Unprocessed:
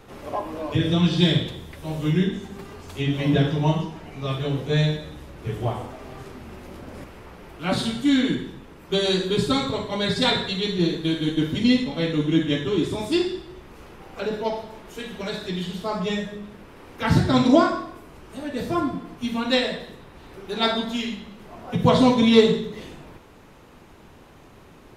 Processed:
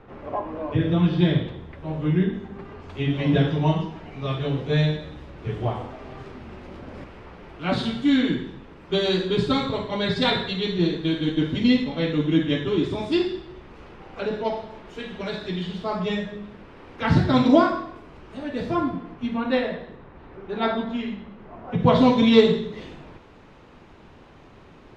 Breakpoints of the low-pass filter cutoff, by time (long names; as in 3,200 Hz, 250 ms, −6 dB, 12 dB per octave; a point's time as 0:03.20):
0:02.52 2,000 Hz
0:03.33 4,000 Hz
0:18.71 4,000 Hz
0:19.46 1,900 Hz
0:21.63 1,900 Hz
0:22.16 4,500 Hz